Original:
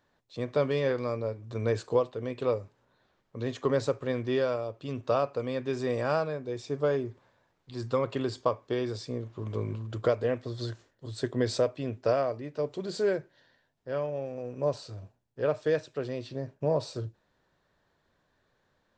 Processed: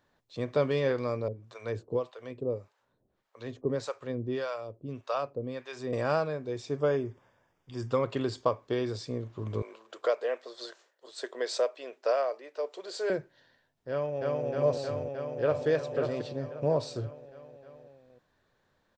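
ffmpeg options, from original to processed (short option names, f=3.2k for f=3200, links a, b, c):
-filter_complex "[0:a]asettb=1/sr,asplit=3[a][b][c];[a]atrim=end=1.284[d];[b]atrim=start=1.28:end=5.93,asetpts=PTS-STARTPTS,afade=t=in:d=0.004:c=qsin,afade=t=out:st=4.646:d=0.004:c=qsin,acrossover=split=570[e][f];[e]aeval=exprs='val(0)*(1-1/2+1/2*cos(2*PI*1.7*n/s))':c=same[g];[f]aeval=exprs='val(0)*(1-1/2-1/2*cos(2*PI*1.7*n/s))':c=same[h];[g][h]amix=inputs=2:normalize=0[i];[c]atrim=start=5.926[j];[d][i]acrossfade=d=0.004:c1=hsin:c2=qsin[k];[k][j]acrossfade=d=0.004:c1=qsin:c2=hsin,asettb=1/sr,asplit=3[l][m][n];[l]atrim=end=6.794[o];[m]atrim=start=6.79:end=7.92,asetpts=PTS-STARTPTS,afade=t=in:d=0.004:c=qsin,afade=t=out:st=1.126:d=0.004:c=qsin,asuperstop=centerf=4100:order=4:qfactor=4[p];[n]atrim=start=7.916[q];[o][p]acrossfade=d=0.004:c1=hsin:c2=qsin[r];[r][q]acrossfade=d=0.004:c1=qsin:c2=hsin,asettb=1/sr,asplit=3[s][t][u];[s]atrim=end=9.624[v];[t]atrim=start=9.62:end=13.1,asetpts=PTS-STARTPTS,afade=t=in:d=0.004:c=qsin,afade=t=out:st=3.476:d=0.004:c=qsin,highpass=f=460:w=0.5412,highpass=f=460:w=1.3066[w];[u]atrim=start=13.096[x];[v][w]acrossfade=d=0.004:c1=hsin:c2=qsin[y];[y][x]acrossfade=d=0.004:c1=qsin:c2=hsin,asplit=2[z][aa];[aa]afade=t=in:st=13.9:d=0.01,afade=t=out:st=14.46:d=0.01,aecho=0:1:310|620|930|1240|1550|1860|2170|2480|2790|3100|3410|3720:1|0.8|0.64|0.512|0.4096|0.32768|0.262144|0.209715|0.167772|0.134218|0.107374|0.0858993[ab];[z][ab]amix=inputs=2:normalize=0,asplit=2[ac][ad];[ad]afade=t=in:st=14.96:d=0.01,afade=t=out:st=15.67:d=0.01,aecho=0:1:540|1080|1620:0.530884|0.132721|0.0331803[ae];[ac][ae]amix=inputs=2:normalize=0"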